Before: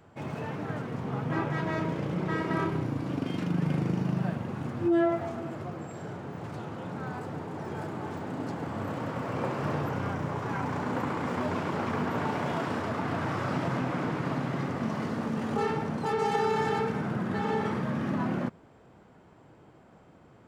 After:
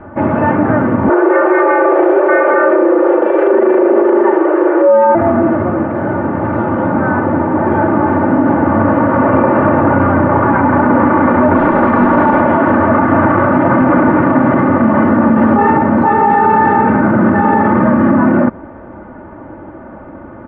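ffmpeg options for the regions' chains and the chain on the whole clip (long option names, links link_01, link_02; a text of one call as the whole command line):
ffmpeg -i in.wav -filter_complex "[0:a]asettb=1/sr,asplit=3[link_01][link_02][link_03];[link_01]atrim=end=1.094[link_04];[link_02]atrim=start=1.09:end=5.15,asetpts=PTS-STARTPTS,afade=type=in:duration=0.004:curve=qsin,afade=type=out:start_time=4.056:duration=0.004:curve=qsin,aeval=exprs='clip(val(0),-1,0.0631)':channel_layout=same,afreqshift=220[link_05];[link_03]atrim=start=5.146[link_06];[link_04][link_05]acrossfade=duration=0.004:curve1=hsin:curve2=qsin[link_07];[link_07][link_06]acrossfade=duration=0.004:curve1=qsin:curve2=hsin,asettb=1/sr,asplit=3[link_08][link_09][link_10];[link_08]atrim=end=11.574[link_11];[link_09]atrim=start=11.57:end=12.4,asetpts=PTS-STARTPTS,afade=type=in:duration=0.004:curve=qsin,afade=type=out:start_time=0.826:duration=0.004:curve=qsin,highpass=110,acrusher=bits=7:dc=4:mix=0:aa=0.000001[link_12];[link_10]atrim=start=12.396[link_13];[link_11][link_12]acrossfade=duration=0.004:curve1=hsin:curve2=qsin[link_14];[link_14][link_13]acrossfade=duration=0.004:curve1=qsin:curve2=hsin,lowpass=frequency=1700:width=0.5412,lowpass=frequency=1700:width=1.3066,aecho=1:1:3.4:0.69,alimiter=level_in=24dB:limit=-1dB:release=50:level=0:latency=1,volume=-1dB" out.wav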